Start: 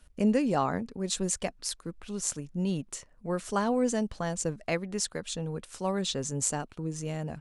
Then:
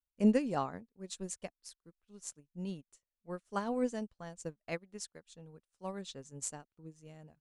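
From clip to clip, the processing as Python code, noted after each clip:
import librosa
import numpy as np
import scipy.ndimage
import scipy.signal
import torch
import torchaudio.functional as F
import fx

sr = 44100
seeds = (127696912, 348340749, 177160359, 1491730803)

y = fx.upward_expand(x, sr, threshold_db=-47.0, expansion=2.5)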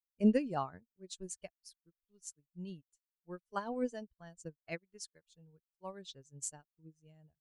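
y = fx.bin_expand(x, sr, power=1.5)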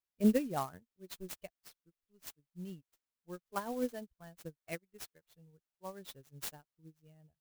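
y = fx.clock_jitter(x, sr, seeds[0], jitter_ms=0.04)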